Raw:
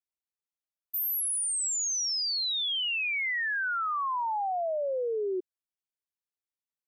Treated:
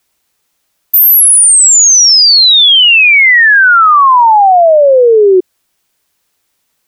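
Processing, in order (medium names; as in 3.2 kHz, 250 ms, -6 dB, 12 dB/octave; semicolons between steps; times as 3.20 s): loudness maximiser +33 dB; trim -1 dB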